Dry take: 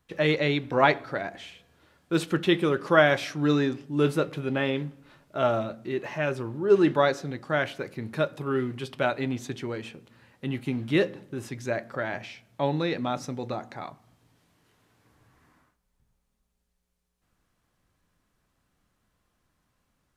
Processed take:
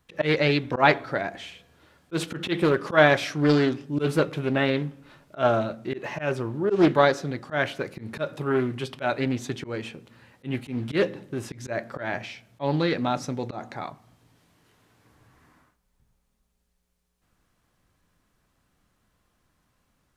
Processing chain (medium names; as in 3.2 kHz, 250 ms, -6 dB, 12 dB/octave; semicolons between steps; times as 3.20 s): slow attack 111 ms; loudspeaker Doppler distortion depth 0.33 ms; trim +3.5 dB